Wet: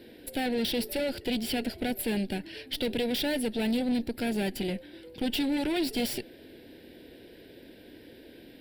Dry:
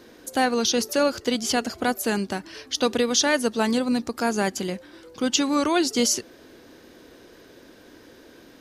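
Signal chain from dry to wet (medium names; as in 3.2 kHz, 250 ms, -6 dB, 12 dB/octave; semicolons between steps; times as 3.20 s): valve stage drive 27 dB, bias 0.6; static phaser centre 2.8 kHz, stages 4; trim +3.5 dB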